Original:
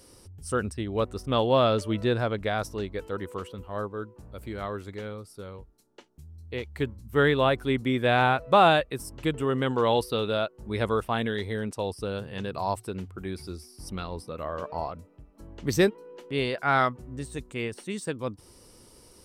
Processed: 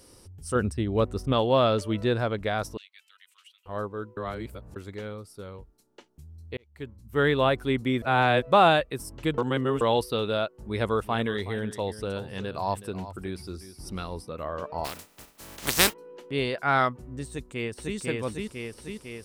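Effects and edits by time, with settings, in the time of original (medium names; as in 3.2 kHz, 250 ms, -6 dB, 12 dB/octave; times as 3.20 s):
0.55–1.33 s: bass shelf 430 Hz +5.5 dB
2.77–3.66 s: ladder high-pass 2.2 kHz, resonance 40%
4.17–4.76 s: reverse
6.57–7.35 s: fade in
8.02–8.42 s: reverse
9.38–9.81 s: reverse
10.58–14.25 s: delay 372 ms -14 dB
14.84–15.92 s: spectral contrast reduction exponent 0.27
17.28–17.97 s: echo throw 500 ms, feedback 65%, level -1 dB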